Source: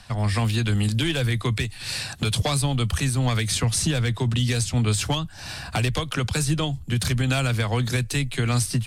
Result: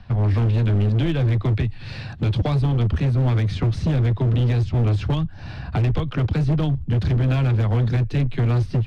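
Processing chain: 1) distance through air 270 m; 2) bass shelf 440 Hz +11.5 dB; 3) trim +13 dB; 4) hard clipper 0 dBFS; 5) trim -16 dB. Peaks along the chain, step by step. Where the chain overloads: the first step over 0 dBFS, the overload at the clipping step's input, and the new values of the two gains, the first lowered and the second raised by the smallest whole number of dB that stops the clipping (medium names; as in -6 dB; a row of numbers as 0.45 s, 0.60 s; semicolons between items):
-14.0 dBFS, -3.5 dBFS, +9.5 dBFS, 0.0 dBFS, -16.0 dBFS; step 3, 9.5 dB; step 3 +3 dB, step 5 -6 dB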